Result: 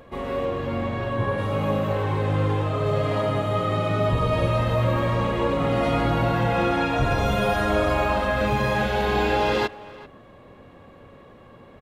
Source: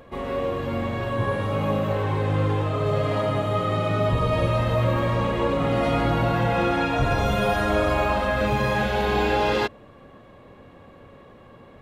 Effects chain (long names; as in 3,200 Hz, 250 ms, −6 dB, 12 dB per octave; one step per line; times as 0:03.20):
0:00.44–0:01.37: high-shelf EQ 10,000 Hz → 5,700 Hz −9 dB
far-end echo of a speakerphone 390 ms, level −18 dB